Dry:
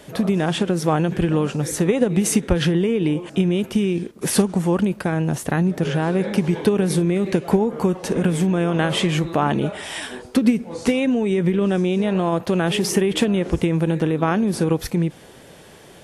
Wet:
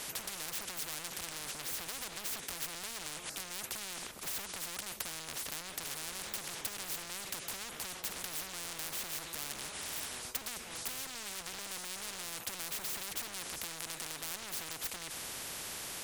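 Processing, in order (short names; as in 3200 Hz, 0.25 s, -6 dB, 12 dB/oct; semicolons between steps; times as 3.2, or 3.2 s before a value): overloaded stage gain 24 dB; high shelf 4900 Hz +7.5 dB; spectral compressor 10:1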